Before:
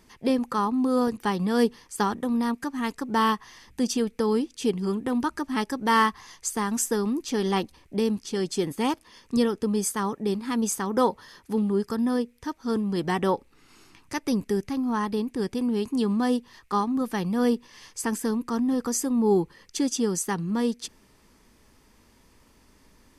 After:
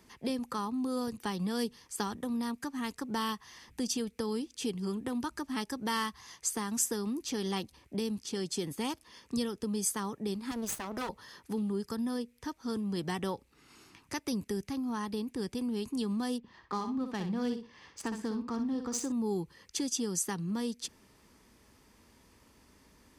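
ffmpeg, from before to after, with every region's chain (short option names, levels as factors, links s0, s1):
-filter_complex "[0:a]asettb=1/sr,asplit=3[s0][s1][s2];[s0]atrim=end=10.514[s3];[s1]atrim=start=10.51:end=11.09,asetpts=PTS-STARTPTS,afade=t=in:d=0.004:c=qsin,afade=t=out:st=0.576:d=0.004:c=qsin,bandreject=f=530:w=5.7,aeval=exprs='max(val(0),0)':c=same[s4];[s2]atrim=start=11.086[s5];[s3][s4]acrossfade=d=0.004:c1=hsin:c2=qsin[s6];[s6][s5]acrossfade=d=0.004:c1=qsin:c2=hsin,asettb=1/sr,asplit=3[s7][s8][s9];[s7]atrim=end=16.384[s10];[s8]atrim=start=16.38:end=19.12,asetpts=PTS-STARTPTS,afade=t=in:d=0.004:c=qsin,afade=t=out:st=2.736:d=0.004:c=qsin,adynamicsmooth=sensitivity=3.5:basefreq=2900,aecho=1:1:61|122|183:0.398|0.0717|0.0129,atrim=end_sample=120834[s11];[s9]atrim=start=19.116[s12];[s10][s11]acrossfade=d=0.004:c1=hsin:c2=qsin[s13];[s13][s12]acrossfade=d=0.004:c1=qsin:c2=hsin,highpass=45,acrossover=split=140|3000[s14][s15][s16];[s15]acompressor=threshold=0.02:ratio=2.5[s17];[s14][s17][s16]amix=inputs=3:normalize=0,volume=0.75"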